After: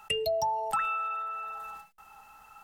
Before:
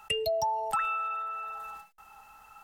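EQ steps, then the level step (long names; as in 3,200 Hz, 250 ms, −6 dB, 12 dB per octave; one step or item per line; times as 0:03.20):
parametric band 170 Hz +2.5 dB 1.2 octaves
mains-hum notches 50/100/150/200 Hz
0.0 dB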